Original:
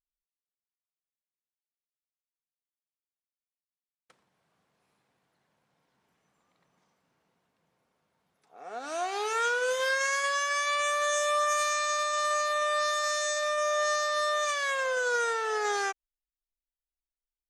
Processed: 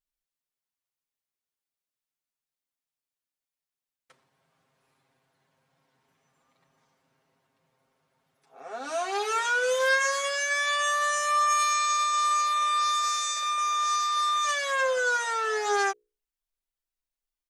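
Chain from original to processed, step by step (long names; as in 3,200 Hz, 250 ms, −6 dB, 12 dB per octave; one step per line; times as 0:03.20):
mains-hum notches 60/120/180/240/300/360/420/480/540/600 Hz
comb filter 7.5 ms, depth 92%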